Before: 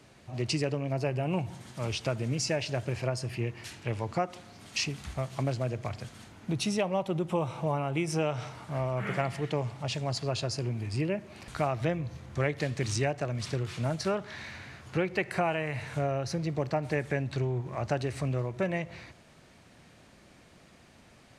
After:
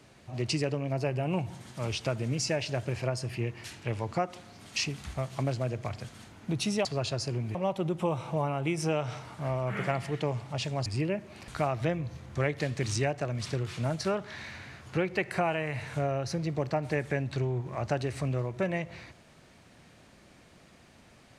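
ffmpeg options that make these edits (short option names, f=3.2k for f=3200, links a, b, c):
-filter_complex "[0:a]asplit=4[a][b][c][d];[a]atrim=end=6.852[e];[b]atrim=start=10.158:end=10.862[f];[c]atrim=start=6.848:end=10.162[g];[d]atrim=start=10.858[h];[e][f]acrossfade=d=0.004:c1=hsin:c2=hsin[i];[i][g]acrossfade=d=0.004:c1=hsin:c2=hsin[j];[j][h]acrossfade=d=0.004:c1=hsin:c2=hsin"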